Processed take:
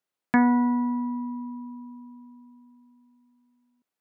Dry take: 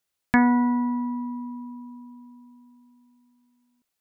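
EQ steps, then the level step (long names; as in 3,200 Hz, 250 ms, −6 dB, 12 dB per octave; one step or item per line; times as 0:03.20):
high-pass filter 160 Hz
high-shelf EQ 2,400 Hz −10.5 dB
0.0 dB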